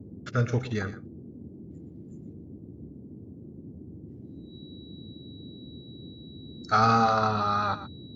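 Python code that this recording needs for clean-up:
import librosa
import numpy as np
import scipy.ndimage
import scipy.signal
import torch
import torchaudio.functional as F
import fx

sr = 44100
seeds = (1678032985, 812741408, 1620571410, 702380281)

y = fx.notch(x, sr, hz=3900.0, q=30.0)
y = fx.noise_reduce(y, sr, print_start_s=3.07, print_end_s=3.57, reduce_db=27.0)
y = fx.fix_echo_inverse(y, sr, delay_ms=118, level_db=-14.0)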